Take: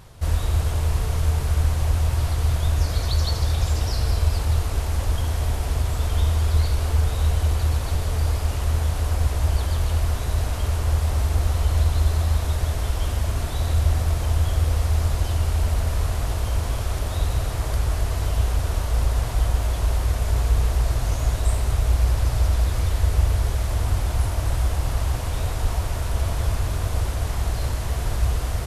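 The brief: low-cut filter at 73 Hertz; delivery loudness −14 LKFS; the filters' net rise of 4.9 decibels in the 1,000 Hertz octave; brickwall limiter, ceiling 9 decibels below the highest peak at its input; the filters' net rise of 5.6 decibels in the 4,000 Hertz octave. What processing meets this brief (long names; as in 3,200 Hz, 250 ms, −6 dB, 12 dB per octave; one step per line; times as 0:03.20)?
high-pass filter 73 Hz
parametric band 1,000 Hz +6 dB
parametric band 4,000 Hz +6.5 dB
level +15 dB
brickwall limiter −4.5 dBFS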